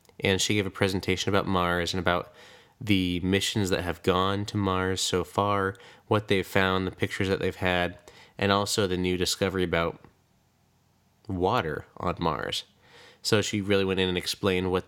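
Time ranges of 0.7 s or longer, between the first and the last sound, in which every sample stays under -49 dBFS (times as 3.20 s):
10.09–11.25 s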